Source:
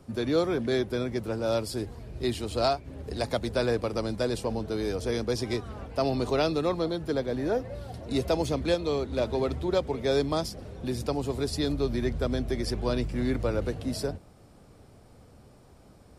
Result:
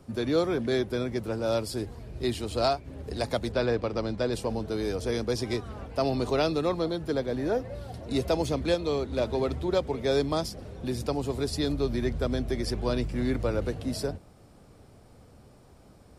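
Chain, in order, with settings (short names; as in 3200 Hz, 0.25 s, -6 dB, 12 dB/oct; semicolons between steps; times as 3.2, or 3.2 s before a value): 3.52–4.33 LPF 4800 Hz 12 dB/oct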